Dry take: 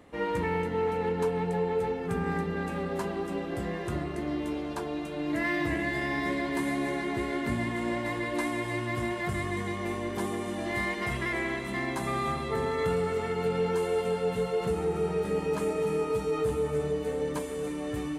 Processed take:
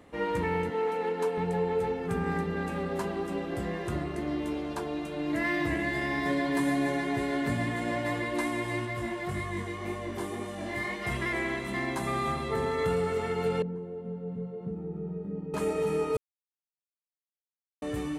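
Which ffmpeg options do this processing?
-filter_complex "[0:a]asettb=1/sr,asplit=3[a][b][c];[a]atrim=end=0.704[d];[b]atrim=start=0.7:end=1.38,asetpts=PTS-STARTPTS,afade=t=in:d=0.004:c=qsin,afade=t=out:st=0.676:d=0.004:c=qsin,highpass=290[e];[c]atrim=start=1.376[f];[d][e]acrossfade=d=0.004:c1=hsin:c2=qsin[g];[g][f]acrossfade=d=0.004:c1=qsin:c2=hsin,asettb=1/sr,asplit=3[h][i][j];[h]atrim=end=6.254[k];[i]atrim=start=6.25:end=8.22,asetpts=PTS-STARTPTS,afade=t=in:d=0.004:c=qsin,afade=t=out:st=1.966:d=0.004:c=qsin,aecho=1:1:6.9:0.58,atrim=end_sample=86877[l];[j]atrim=start=8.216[m];[k][l]acrossfade=d=0.004:c1=hsin:c2=qsin[n];[n][m]acrossfade=d=0.004:c1=qsin:c2=hsin,asplit=3[o][p][q];[o]afade=t=out:st=8.85:d=0.02[r];[p]flanger=delay=18.5:depth=5.1:speed=1.9,afade=t=in:st=8.85:d=0.02,afade=t=out:st=11.05:d=0.02[s];[q]afade=t=in:st=11.05:d=0.02[t];[r][s][t]amix=inputs=3:normalize=0,asettb=1/sr,asplit=3[u][v][w];[u]atrim=end=13.624[x];[v]atrim=start=13.62:end=15.54,asetpts=PTS-STARTPTS,afade=t=in:d=0.004:c=qsin,afade=t=out:st=1.916:d=0.004:c=qsin,bandpass=f=190:t=q:w=1.9[y];[w]atrim=start=15.536[z];[x][y]acrossfade=d=0.004:c1=hsin:c2=qsin[aa];[aa][z]acrossfade=d=0.004:c1=qsin:c2=hsin,asplit=3[ab][ac][ad];[ab]atrim=end=16.17,asetpts=PTS-STARTPTS,afade=t=out:st=16.166:d=0.004:c=hsin[ae];[ac]atrim=start=16.17:end=17.82,asetpts=PTS-STARTPTS,volume=0[af];[ad]atrim=start=17.82,asetpts=PTS-STARTPTS,afade=t=in:d=0.004:c=hsin[ag];[ae][af][ag]concat=n=3:v=0:a=1"

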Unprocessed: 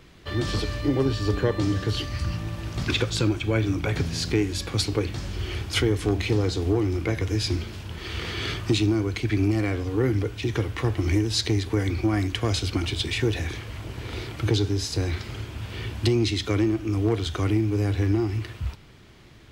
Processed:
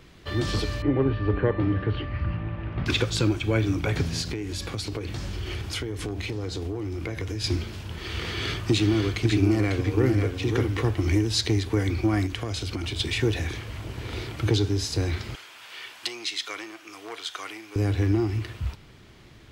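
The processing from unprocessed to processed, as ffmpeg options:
-filter_complex "[0:a]asettb=1/sr,asplit=3[a][b][c];[a]atrim=end=0.824[d];[b]atrim=start=0.82:end=2.86,asetpts=PTS-STARTPTS,afade=t=in:d=0.004:c=qsin,afade=t=out:st=2.036:d=0.004:c=qsin,lowpass=f=2.5k:w=0.5412,lowpass=f=2.5k:w=1.3066[e];[c]atrim=start=2.856[f];[d][e]acrossfade=d=0.004:c1=hsin:c2=qsin[g];[g][f]acrossfade=d=0.004:c1=qsin:c2=hsin,asettb=1/sr,asplit=3[h][i][j];[h]atrim=end=4.214[k];[i]atrim=start=4.21:end=7.44,asetpts=PTS-STARTPTS,afade=t=in:d=0.004:c=qsin,afade=t=out:st=3.226:d=0.004:c=qsin,acompressor=threshold=-27dB:ratio=6:attack=3.2:release=140:knee=1:detection=peak[l];[j]atrim=start=7.436[m];[k][l]acrossfade=d=0.004:c1=hsin:c2=qsin[n];[n][m]acrossfade=d=0.004:c1=qsin:c2=hsin,asettb=1/sr,asplit=3[o][p][q];[o]atrim=end=8.224[r];[p]atrim=start=8.22:end=10.91,asetpts=PTS-STARTPTS,afade=t=in:d=0.004:c=qsin,afade=t=out:st=2.686:d=0.004:c=qsin,aecho=1:1:547:0.531,atrim=end_sample=118629[s];[q]atrim=start=10.906[t];[r][s]acrossfade=d=0.004:c1=hsin:c2=qsin[u];[u][t]acrossfade=d=0.004:c1=qsin:c2=hsin,asettb=1/sr,asplit=3[v][w][x];[v]atrim=end=12.264[y];[w]atrim=start=12.26:end=13,asetpts=PTS-STARTPTS,afade=t=in:d=0.004:c=qsin,afade=t=out:st=0.736:d=0.004:c=qsin,acompressor=threshold=-26dB:ratio=6:attack=3.2:release=140:knee=1:detection=peak[z];[x]atrim=start=12.996[aa];[y][z]acrossfade=d=0.004:c1=hsin:c2=qsin[ab];[ab][aa]acrossfade=d=0.004:c1=qsin:c2=hsin,asettb=1/sr,asplit=3[ac][ad][ae];[ac]atrim=end=15.354[af];[ad]atrim=start=15.35:end=17.76,asetpts=PTS-STARTPTS,afade=t=in:d=0.004:c=qsin,afade=t=out:st=2.406:d=0.004:c=qsin,highpass=1k[ag];[ae]atrim=start=17.756[ah];[af][ag]acrossfade=d=0.004:c1=hsin:c2=qsin[ai];[ai][ah]acrossfade=d=0.004:c1=qsin:c2=hsin"

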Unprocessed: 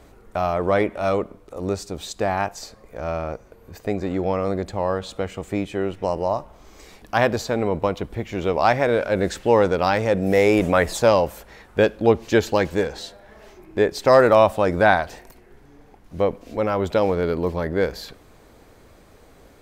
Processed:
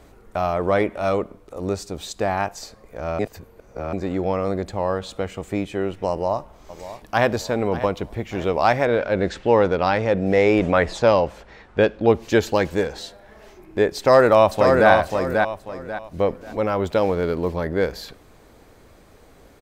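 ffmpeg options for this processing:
-filter_complex "[0:a]asplit=2[a][b];[b]afade=t=in:st=6.1:d=0.01,afade=t=out:st=7.26:d=0.01,aecho=0:1:590|1180|1770|2360:0.211349|0.095107|0.0427982|0.0192592[c];[a][c]amix=inputs=2:normalize=0,asettb=1/sr,asplit=3[d][e][f];[d]atrim=end=8.854[g];[e]atrim=start=8.85:end=12.1,asetpts=PTS-STARTPTS,afade=t=in:d=0.004:c=qsin,afade=t=out:st=3.246:d=0.004:c=qsin,lowpass=4.7k[h];[f]atrim=start=12.096[i];[g][h]acrossfade=d=0.004:c1=hsin:c2=qsin[j];[j][i]acrossfade=d=0.004:c1=qsin:c2=hsin,asplit=2[k][l];[l]afade=t=in:st=13.97:d=0.01,afade=t=out:st=14.9:d=0.01,aecho=0:1:540|1080|1620|2160:0.630957|0.189287|0.0567862|0.0170358[m];[k][m]amix=inputs=2:normalize=0,asettb=1/sr,asplit=3[n][o][p];[n]atrim=end=16.864[q];[o]atrim=start=16.86:end=17.5,asetpts=PTS-STARTPTS,afade=t=in:d=0.004:c=qsin,afade=t=out:st=0.636:d=0.004:c=qsin,aeval=exprs='sgn(val(0))*max(abs(val(0))-0.00376,0)':c=same[r];[p]atrim=start=17.496[s];[q][r]acrossfade=d=0.004:c1=hsin:c2=qsin[t];[t][s]acrossfade=d=0.004:c1=qsin:c2=hsin,asplit=3[u][v][w];[u]atrim=end=3.192[x];[v]atrim=start=3.188:end=3.932,asetpts=PTS-STARTPTS,areverse[y];[w]atrim=start=3.928[z];[x][y]acrossfade=d=0.004:c1=hsin:c2=hsin[aa];[aa][z]acrossfade=d=0.004:c1=hsin:c2=hsin"

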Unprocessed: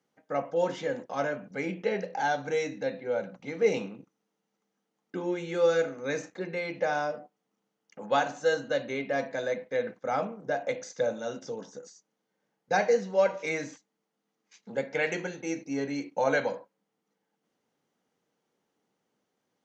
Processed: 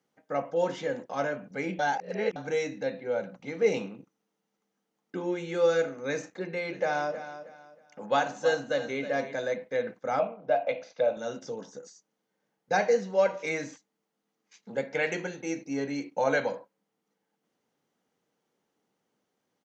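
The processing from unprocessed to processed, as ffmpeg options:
-filter_complex "[0:a]asplit=3[a][b][c];[a]afade=t=out:st=6.64:d=0.02[d];[b]aecho=1:1:317|634|951:0.251|0.0728|0.0211,afade=t=in:st=6.64:d=0.02,afade=t=out:st=9.33:d=0.02[e];[c]afade=t=in:st=9.33:d=0.02[f];[d][e][f]amix=inputs=3:normalize=0,asettb=1/sr,asplit=3[g][h][i];[g]atrim=end=10.194[j];[h]atrim=start=10.19:end=11.17,asetpts=PTS-STARTPTS,afade=t=in:d=0.004:c=qsin,afade=t=out:st=0.976:d=0.004:c=qsin,highpass=160,equalizer=f=220:t=q:w=4:g=-6,equalizer=f=380:t=q:w=4:g=-8,equalizer=f=650:t=q:w=4:g=9,equalizer=f=1.8k:t=q:w=4:g=-7,equalizer=f=2.5k:t=q:w=4:g=7,lowpass=f=4.1k:w=0.5412,lowpass=f=4.1k:w=1.3066[k];[i]atrim=start=11.166[l];[j][k]acrossfade=d=0.004:c1=hsin:c2=qsin[m];[m][l]acrossfade=d=0.004:c1=qsin:c2=hsin,asplit=3[n][o][p];[n]atrim=end=1.792[q];[o]atrim=start=1.788:end=2.362,asetpts=PTS-STARTPTS,areverse[r];[p]atrim=start=2.358[s];[q][r]acrossfade=d=0.004:c1=hsin:c2=hsin[t];[t][s]acrossfade=d=0.004:c1=hsin:c2=hsin"

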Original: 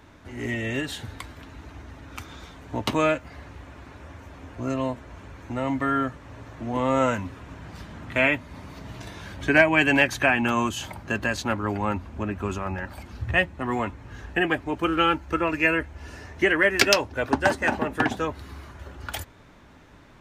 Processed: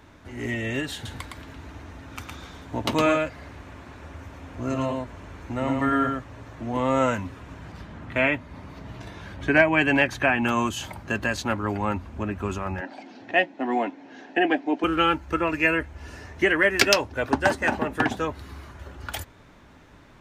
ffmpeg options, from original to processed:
-filter_complex "[0:a]asettb=1/sr,asplit=3[a][b][c];[a]atrim=end=0.944[d];[b]atrim=start=0.94:end=6.24,asetpts=PTS-STARTPTS,afade=t=in:d=0.004:c=qsin,afade=t=out:st=5.296:d=0.004:c=qsin,aecho=1:1:112:0.668,atrim=end_sample=233730[e];[c]atrim=start=6.236[f];[d][e]acrossfade=d=0.004:c1=hsin:c2=qsin[g];[g][f]acrossfade=d=0.004:c1=qsin:c2=hsin,asettb=1/sr,asplit=3[h][i][j];[h]atrim=end=7.724[k];[i]atrim=start=7.72:end=10.42,asetpts=PTS-STARTPTS,afade=t=in:d=0.004:c=qsin,afade=t=out:st=2.696:d=0.004:c=qsin,highshelf=f=4.4k:g=-9[l];[j]atrim=start=10.416[m];[k][l]acrossfade=d=0.004:c1=hsin:c2=qsin[n];[n][m]acrossfade=d=0.004:c1=qsin:c2=hsin,asettb=1/sr,asplit=3[o][p][q];[o]atrim=end=12.814[r];[p]atrim=start=12.81:end=14.84,asetpts=PTS-STARTPTS,afade=t=in:d=0.004:c=qsin,afade=t=out:st=2.026:d=0.004:c=qsin,highpass=f=240:w=0.5412,highpass=f=240:w=1.3066,equalizer=f=280:t=q:w=4:g=9,equalizer=f=720:t=q:w=4:g=8,equalizer=f=1.2k:t=q:w=4:g=-10,lowpass=f=5.9k:w=0.5412,lowpass=f=5.9k:w=1.3066[s];[q]atrim=start=14.836[t];[r][s]acrossfade=d=0.004:c1=hsin:c2=qsin[u];[u][t]acrossfade=d=0.004:c1=qsin:c2=hsin"

